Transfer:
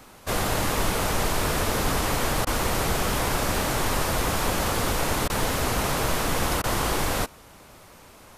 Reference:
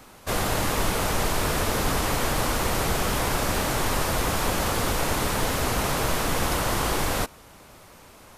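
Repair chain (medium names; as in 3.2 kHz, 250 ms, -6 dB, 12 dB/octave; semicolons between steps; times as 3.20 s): interpolate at 2.45/5.28/6.62 s, 17 ms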